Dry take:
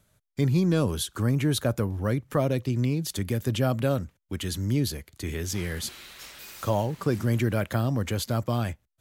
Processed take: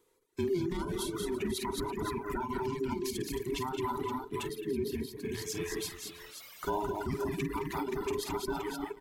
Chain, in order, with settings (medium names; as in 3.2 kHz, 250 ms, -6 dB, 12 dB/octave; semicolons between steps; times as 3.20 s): every band turned upside down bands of 500 Hz; multi-tap echo 51/178/217/324/484/523 ms -6.5/-7/-4/-10.5/-12/-7.5 dB; peak limiter -17 dBFS, peak gain reduction 9 dB; 4.46–5.32 s: peaking EQ 6.6 kHz -9.5 dB 1.6 oct; reverb removal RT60 2 s; trim -5.5 dB